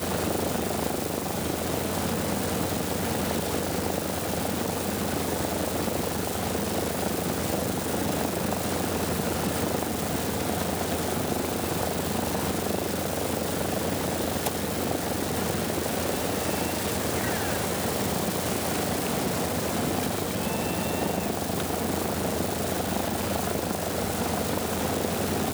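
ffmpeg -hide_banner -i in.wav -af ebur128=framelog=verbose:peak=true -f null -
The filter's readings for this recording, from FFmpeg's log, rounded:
Integrated loudness:
  I:         -27.5 LUFS
  Threshold: -37.5 LUFS
Loudness range:
  LRA:         0.9 LU
  Threshold: -47.5 LUFS
  LRA low:   -27.8 LUFS
  LRA high:  -26.9 LUFS
True peak:
  Peak:      -12.9 dBFS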